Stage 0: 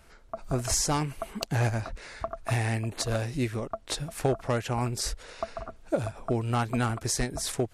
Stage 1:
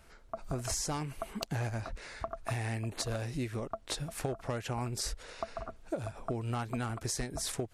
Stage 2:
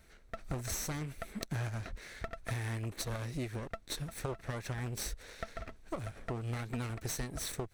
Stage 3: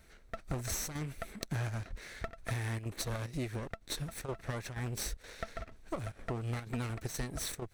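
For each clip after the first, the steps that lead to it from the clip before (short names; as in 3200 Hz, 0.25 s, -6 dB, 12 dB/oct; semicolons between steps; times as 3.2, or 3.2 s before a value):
compressor, threshold -29 dBFS, peak gain reduction 8.5 dB; gain -2.5 dB
minimum comb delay 0.5 ms; gain -1.5 dB
chopper 2.1 Hz, depth 60%, duty 85%; gain +1 dB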